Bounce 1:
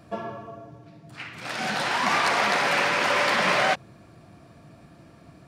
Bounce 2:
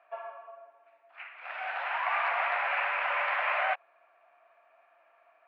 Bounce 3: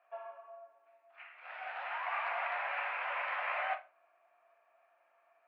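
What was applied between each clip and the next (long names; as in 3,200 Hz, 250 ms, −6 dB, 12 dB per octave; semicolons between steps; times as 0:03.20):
elliptic band-pass filter 660–2,600 Hz, stop band 70 dB; level −5.5 dB
rectangular room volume 190 cubic metres, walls furnished, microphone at 0.94 metres; level −8.5 dB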